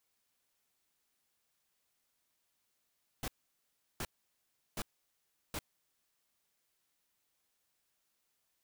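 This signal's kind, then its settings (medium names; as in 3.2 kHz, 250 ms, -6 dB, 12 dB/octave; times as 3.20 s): noise bursts pink, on 0.05 s, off 0.72 s, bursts 4, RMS -38.5 dBFS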